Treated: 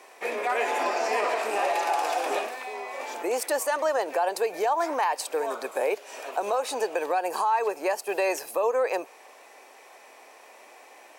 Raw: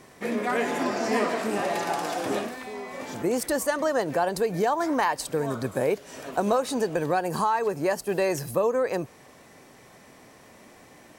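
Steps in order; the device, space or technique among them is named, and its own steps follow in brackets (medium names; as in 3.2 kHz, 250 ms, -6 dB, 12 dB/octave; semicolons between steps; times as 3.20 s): laptop speaker (high-pass 400 Hz 24 dB/octave; peaking EQ 830 Hz +6 dB 0.59 oct; peaking EQ 2.5 kHz +8 dB 0.24 oct; peak limiter -16.5 dBFS, peak gain reduction 7 dB)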